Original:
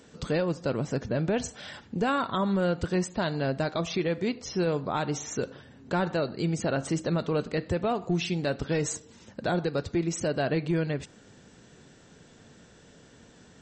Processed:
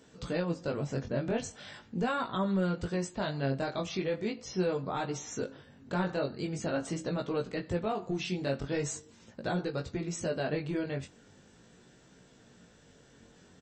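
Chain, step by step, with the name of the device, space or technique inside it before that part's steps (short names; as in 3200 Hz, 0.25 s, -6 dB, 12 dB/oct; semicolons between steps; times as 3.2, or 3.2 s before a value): double-tracked vocal (doubler 22 ms -13 dB; chorus 0.41 Hz, delay 15.5 ms, depth 6.5 ms); gain -2 dB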